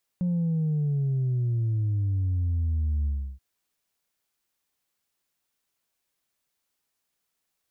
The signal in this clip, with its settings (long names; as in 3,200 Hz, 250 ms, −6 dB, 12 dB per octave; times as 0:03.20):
bass drop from 180 Hz, over 3.18 s, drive 1 dB, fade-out 0.33 s, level −23 dB